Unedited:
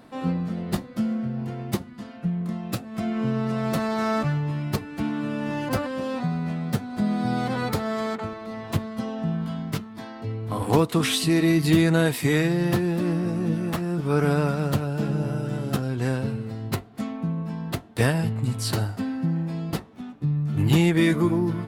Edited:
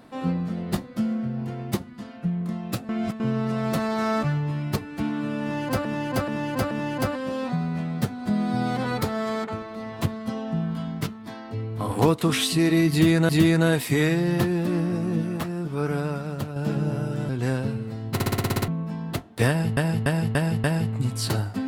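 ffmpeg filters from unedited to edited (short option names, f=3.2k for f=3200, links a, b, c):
-filter_complex "[0:a]asplit=22[a][b][c][d][e][f][g][h][i][j][k][l][m][n][o][p][q][r][s][t][u][v];[a]atrim=end=2.892[w];[b]atrim=start=2.888:end=3.202,asetpts=PTS-STARTPTS,areverse[x];[c]atrim=start=3.198:end=5.852[y];[d]atrim=start=5.418:end=5.852[z];[e]atrim=start=5.418:end=5.852[aa];[f]atrim=start=5.418:end=12.002[ab];[g]atrim=start=11.618:end=14.89,asetpts=PTS-STARTPTS,afade=t=out:st=1.822:d=1.45:c=qua:silence=0.473151[ac];[h]atrim=start=14.89:end=15.622,asetpts=PTS-STARTPTS,afade=t=in:d=0.004:c=hsin:silence=0.473151[ad];[i]atrim=start=15.878:end=16.792[ae];[j]atrim=start=16.728:end=16.792[af];[k]atrim=start=16.728:end=16.792[ag];[l]atrim=start=16.728:end=16.792[ah];[m]atrim=start=16.728:end=16.792[ai];[n]atrim=start=16.728:end=16.792[aj];[o]atrim=start=16.728:end=16.792[ak];[p]atrim=start=16.728:end=16.792[al];[q]atrim=start=16.728:end=16.792[am];[r]atrim=start=17.268:end=18.362[an];[s]atrim=start=18.068:end=18.362[ao];[t]atrim=start=18.068:end=18.362[ap];[u]atrim=start=18.068:end=18.362[aq];[v]atrim=start=18.068[ar];[w][x]acrossfade=d=0.004:c1=hsin:c2=hsin[as];[as][y]acrossfade=d=0.004:c1=hsin:c2=hsin[at];[at][z]acrossfade=d=0.004:c1=hsin:c2=hsin[au];[au][aa]acrossfade=d=0.004:c1=hsin:c2=hsin[av];[av][ab]acrossfade=d=0.004:c1=hsin:c2=hsin[aw];[ac][ad]concat=n=2:v=0:a=1[ax];[aw][ax]acrossfade=d=0.004:c1=hsin:c2=hsin[ay];[ay][ae]acrossfade=d=0.004:c1=hsin:c2=hsin[az];[az][af]acrossfade=d=0.004:c1=hsin:c2=hsin[ba];[ba][ag]acrossfade=d=0.004:c1=hsin:c2=hsin[bb];[bb][ah]acrossfade=d=0.004:c1=hsin:c2=hsin[bc];[bc][ai]acrossfade=d=0.004:c1=hsin:c2=hsin[bd];[bd][aj]acrossfade=d=0.004:c1=hsin:c2=hsin[be];[be][ak]acrossfade=d=0.004:c1=hsin:c2=hsin[bf];[bf][al]acrossfade=d=0.004:c1=hsin:c2=hsin[bg];[bg][am]acrossfade=d=0.004:c1=hsin:c2=hsin[bh];[bh][an]acrossfade=d=0.004:c1=hsin:c2=hsin[bi];[bi][ao]acrossfade=d=0.004:c1=hsin:c2=hsin[bj];[bj][ap]acrossfade=d=0.004:c1=hsin:c2=hsin[bk];[bk][aq]acrossfade=d=0.004:c1=hsin:c2=hsin[bl];[bl][ar]acrossfade=d=0.004:c1=hsin:c2=hsin"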